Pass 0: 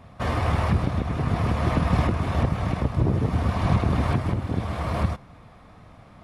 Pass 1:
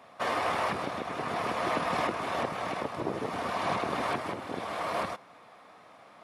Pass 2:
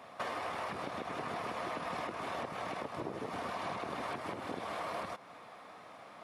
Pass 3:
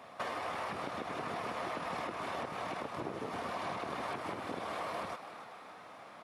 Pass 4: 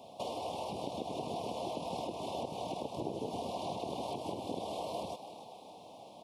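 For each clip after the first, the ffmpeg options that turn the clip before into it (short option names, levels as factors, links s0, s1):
-af "highpass=440"
-af "acompressor=threshold=0.0126:ratio=6,volume=1.19"
-filter_complex "[0:a]asplit=6[s0][s1][s2][s3][s4][s5];[s1]adelay=283,afreqshift=100,volume=0.266[s6];[s2]adelay=566,afreqshift=200,volume=0.13[s7];[s3]adelay=849,afreqshift=300,volume=0.0638[s8];[s4]adelay=1132,afreqshift=400,volume=0.0313[s9];[s5]adelay=1415,afreqshift=500,volume=0.0153[s10];[s0][s6][s7][s8][s9][s10]amix=inputs=6:normalize=0"
-af "asuperstop=centerf=1600:order=8:qfactor=0.84,volume=1.33"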